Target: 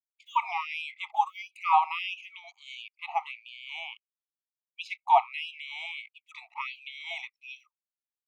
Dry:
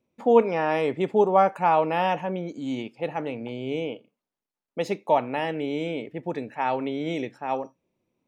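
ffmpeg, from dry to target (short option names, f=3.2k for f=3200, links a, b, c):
-filter_complex "[0:a]acrossover=split=3700[a][b];[b]acompressor=threshold=-57dB:ratio=4:attack=1:release=60[c];[a][c]amix=inputs=2:normalize=0,anlmdn=0.0398,asuperstop=centerf=1600:order=12:qfactor=2.2,asubboost=boost=3:cutoff=70,afftfilt=real='re*gte(b*sr/1024,660*pow(2400/660,0.5+0.5*sin(2*PI*1.5*pts/sr)))':imag='im*gte(b*sr/1024,660*pow(2400/660,0.5+0.5*sin(2*PI*1.5*pts/sr)))':win_size=1024:overlap=0.75,volume=4dB"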